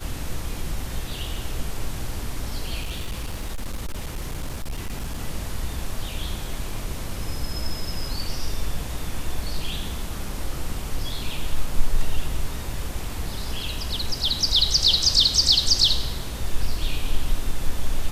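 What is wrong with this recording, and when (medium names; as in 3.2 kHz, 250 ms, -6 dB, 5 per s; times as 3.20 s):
2.81–5.18 s: clipped -24.5 dBFS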